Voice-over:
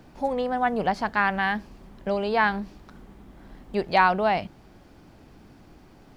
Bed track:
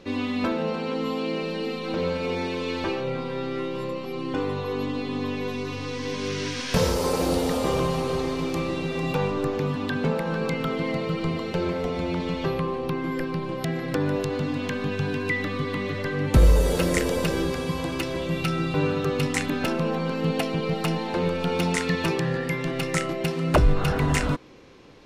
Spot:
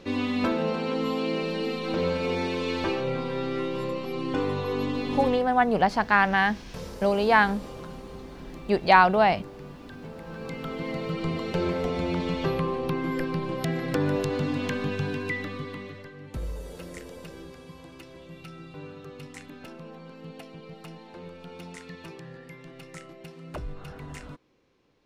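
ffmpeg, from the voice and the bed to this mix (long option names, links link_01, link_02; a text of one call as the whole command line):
ffmpeg -i stem1.wav -i stem2.wav -filter_complex "[0:a]adelay=4950,volume=2.5dB[link_01];[1:a]volume=17dB,afade=type=out:start_time=5.25:duration=0.21:silence=0.133352,afade=type=in:start_time=10.14:duration=1.48:silence=0.141254,afade=type=out:start_time=14.69:duration=1.44:silence=0.133352[link_02];[link_01][link_02]amix=inputs=2:normalize=0" out.wav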